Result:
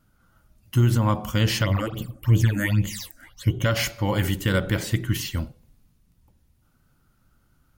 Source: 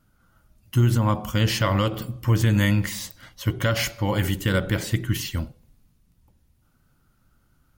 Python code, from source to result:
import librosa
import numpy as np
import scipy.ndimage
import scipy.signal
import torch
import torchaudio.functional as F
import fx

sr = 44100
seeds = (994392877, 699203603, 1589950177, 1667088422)

y = fx.phaser_stages(x, sr, stages=8, low_hz=120.0, high_hz=1600.0, hz=fx.line((1.63, 3.7), (3.64, 1.1)), feedback_pct=50, at=(1.63, 3.64), fade=0.02)